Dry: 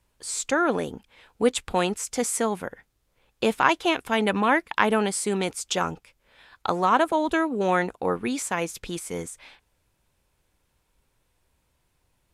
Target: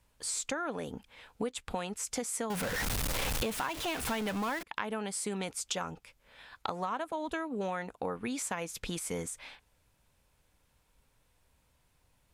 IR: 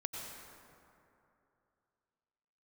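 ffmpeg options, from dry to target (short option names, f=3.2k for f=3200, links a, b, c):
-filter_complex "[0:a]asettb=1/sr,asplit=3[a][b][c];[a]atrim=end=2.504[d];[b]atrim=start=2.5:end=4.63,asetpts=PTS-STARTPTS,afade=t=in:d=0.004:c=qsin,afade=t=out:st=2.126:d=0.004:c=qsin,aeval=exprs='val(0)+0.5*0.0944*sgn(val(0))':c=same[e];[c]atrim=start=4.626[f];[d][e]acrossfade=d=0.004:c1=hsin:c2=qsin[g];[g][f]acrossfade=d=0.004:c1=qsin:c2=hsin,equalizer=f=360:w=6.6:g=-7.5,acompressor=threshold=-32dB:ratio=8"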